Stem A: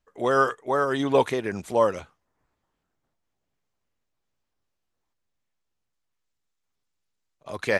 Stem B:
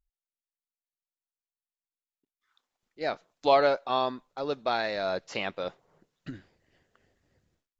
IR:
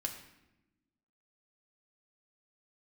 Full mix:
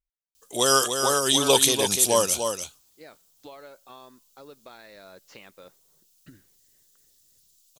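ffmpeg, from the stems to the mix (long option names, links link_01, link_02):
-filter_complex "[0:a]highshelf=frequency=8300:gain=10.5,aexciter=amount=9.4:drive=5.9:freq=2900,adelay=350,volume=-1.5dB,asplit=2[link_01][link_02];[link_02]volume=-6.5dB[link_03];[1:a]equalizer=frequency=720:width_type=o:width=0.54:gain=-6,acompressor=threshold=-37dB:ratio=4,volume=-7.5dB[link_04];[link_03]aecho=0:1:296:1[link_05];[link_01][link_04][link_05]amix=inputs=3:normalize=0"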